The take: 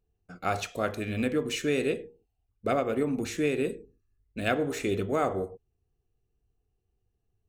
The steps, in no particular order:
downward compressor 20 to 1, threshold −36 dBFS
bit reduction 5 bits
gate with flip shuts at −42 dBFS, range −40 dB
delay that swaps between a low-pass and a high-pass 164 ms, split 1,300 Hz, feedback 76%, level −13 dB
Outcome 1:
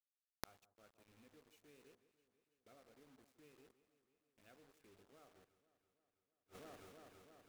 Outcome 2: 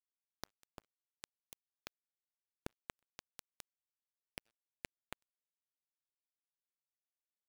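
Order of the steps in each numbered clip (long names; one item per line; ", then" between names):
bit reduction, then delay that swaps between a low-pass and a high-pass, then gate with flip, then downward compressor
delay that swaps between a low-pass and a high-pass, then downward compressor, then bit reduction, then gate with flip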